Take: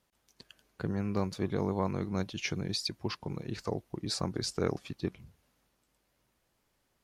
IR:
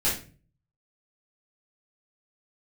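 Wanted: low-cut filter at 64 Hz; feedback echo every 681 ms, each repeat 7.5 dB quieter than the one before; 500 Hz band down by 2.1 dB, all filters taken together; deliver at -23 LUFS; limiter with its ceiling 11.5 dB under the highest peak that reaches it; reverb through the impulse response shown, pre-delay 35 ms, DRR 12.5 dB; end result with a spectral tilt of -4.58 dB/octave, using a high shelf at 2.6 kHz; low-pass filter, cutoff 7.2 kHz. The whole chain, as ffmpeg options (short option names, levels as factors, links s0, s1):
-filter_complex "[0:a]highpass=64,lowpass=7200,equalizer=f=500:t=o:g=-3,highshelf=f=2600:g=7.5,alimiter=level_in=1.33:limit=0.0631:level=0:latency=1,volume=0.75,aecho=1:1:681|1362|2043|2724|3405:0.422|0.177|0.0744|0.0312|0.0131,asplit=2[s0][s1];[1:a]atrim=start_sample=2205,adelay=35[s2];[s1][s2]afir=irnorm=-1:irlink=0,volume=0.0708[s3];[s0][s3]amix=inputs=2:normalize=0,volume=5.31"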